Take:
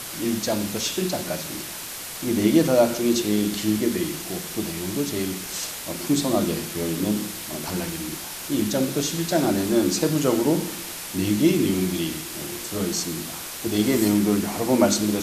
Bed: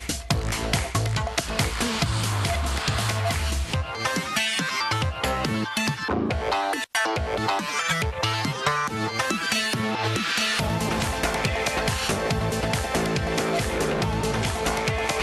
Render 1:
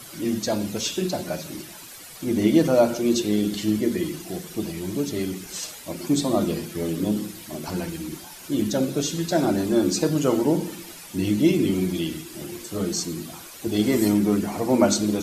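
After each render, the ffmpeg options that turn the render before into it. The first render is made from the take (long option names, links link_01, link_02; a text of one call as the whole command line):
ffmpeg -i in.wav -af "afftdn=noise_reduction=11:noise_floor=-35" out.wav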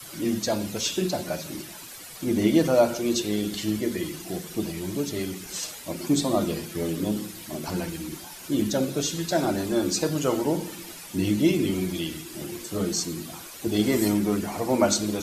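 ffmpeg -i in.wav -af "adynamicequalizer=threshold=0.02:dfrequency=240:dqfactor=0.75:tfrequency=240:tqfactor=0.75:attack=5:release=100:ratio=0.375:range=3:mode=cutabove:tftype=bell" out.wav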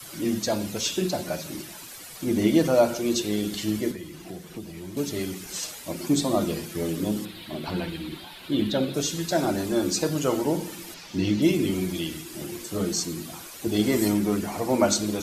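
ffmpeg -i in.wav -filter_complex "[0:a]asettb=1/sr,asplit=3[link_01][link_02][link_03];[link_01]atrim=end=3.914[link_04];[link_02]atrim=start=3.91:end=4.97,asetpts=PTS-STARTPTS,afade=type=in:duration=0.004:curve=qsin,afade=type=out:start_time=1.056:duration=0.004:curve=qsin,acrossover=split=160|3700[link_05][link_06][link_07];[link_05]acompressor=threshold=-44dB:ratio=4[link_08];[link_06]acompressor=threshold=-38dB:ratio=4[link_09];[link_07]acompressor=threshold=-53dB:ratio=4[link_10];[link_08][link_09][link_10]amix=inputs=3:normalize=0[link_11];[link_03]atrim=start=4.966[link_12];[link_04][link_11]acrossfade=duration=0.004:curve1=hsin:curve2=qsin[link_13];[link_13][link_12]acrossfade=duration=0.004:curve1=qsin:curve2=hsin,asettb=1/sr,asplit=3[link_14][link_15][link_16];[link_14]atrim=end=7.254[link_17];[link_15]atrim=start=7.25:end=8.94,asetpts=PTS-STARTPTS,afade=type=in:duration=0.004:curve=qsin,afade=type=out:start_time=1.686:duration=0.004:curve=qsin,highshelf=frequency=4800:width_type=q:width=3:gain=-8.5[link_18];[link_16]atrim=start=8.936[link_19];[link_17][link_18]acrossfade=duration=0.004:curve1=hsin:curve2=qsin[link_20];[link_20][link_19]acrossfade=duration=0.004:curve1=qsin:curve2=hsin,asettb=1/sr,asplit=3[link_21][link_22][link_23];[link_21]atrim=end=10.944[link_24];[link_22]atrim=start=10.94:end=11.42,asetpts=PTS-STARTPTS,afade=type=in:duration=0.004:curve=qsin,afade=type=out:start_time=0.476:duration=0.004:curve=qsin,highshelf=frequency=7100:width_type=q:width=1.5:gain=-11.5[link_25];[link_23]atrim=start=11.416[link_26];[link_24][link_25]acrossfade=duration=0.004:curve1=hsin:curve2=qsin[link_27];[link_27][link_26]acrossfade=duration=0.004:curve1=qsin:curve2=hsin" out.wav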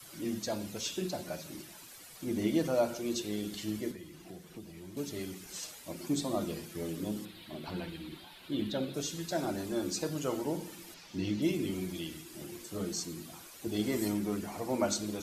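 ffmpeg -i in.wav -af "volume=-9.5dB" out.wav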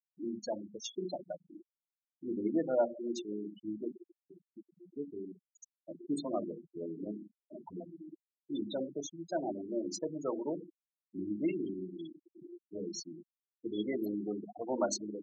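ffmpeg -i in.wav -af "afftfilt=real='re*gte(hypot(re,im),0.0398)':imag='im*gte(hypot(re,im),0.0398)':win_size=1024:overlap=0.75,highpass=270" out.wav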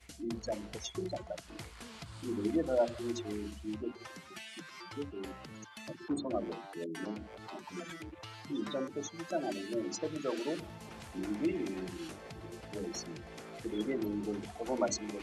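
ffmpeg -i in.wav -i bed.wav -filter_complex "[1:a]volume=-23.5dB[link_01];[0:a][link_01]amix=inputs=2:normalize=0" out.wav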